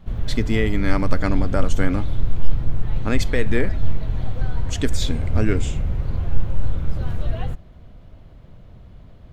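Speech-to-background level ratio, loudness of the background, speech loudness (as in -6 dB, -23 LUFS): 2.0 dB, -27.5 LUFS, -25.5 LUFS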